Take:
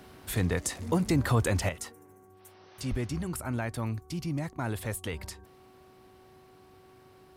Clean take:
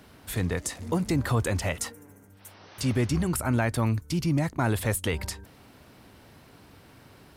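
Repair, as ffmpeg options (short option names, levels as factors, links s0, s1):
-filter_complex "[0:a]bandreject=f=374:t=h:w=4,bandreject=f=748:t=h:w=4,bandreject=f=1122:t=h:w=4,asplit=3[s0][s1][s2];[s0]afade=t=out:st=2.9:d=0.02[s3];[s1]highpass=f=140:w=0.5412,highpass=f=140:w=1.3066,afade=t=in:st=2.9:d=0.02,afade=t=out:st=3.02:d=0.02[s4];[s2]afade=t=in:st=3.02:d=0.02[s5];[s3][s4][s5]amix=inputs=3:normalize=0,asetnsamples=n=441:p=0,asendcmd='1.69 volume volume 7.5dB',volume=1"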